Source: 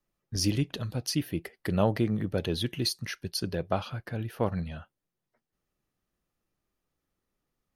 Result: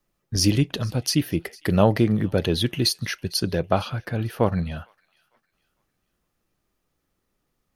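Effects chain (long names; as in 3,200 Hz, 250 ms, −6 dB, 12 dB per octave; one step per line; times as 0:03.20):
delay with a high-pass on its return 454 ms, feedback 34%, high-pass 1,600 Hz, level −22.5 dB
level +7.5 dB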